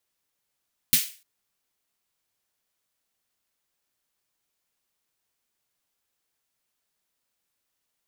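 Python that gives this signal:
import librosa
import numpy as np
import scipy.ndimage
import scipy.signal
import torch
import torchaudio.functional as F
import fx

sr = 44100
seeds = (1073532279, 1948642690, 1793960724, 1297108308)

y = fx.drum_snare(sr, seeds[0], length_s=0.3, hz=150.0, second_hz=240.0, noise_db=11.5, noise_from_hz=2000.0, decay_s=0.13, noise_decay_s=0.36)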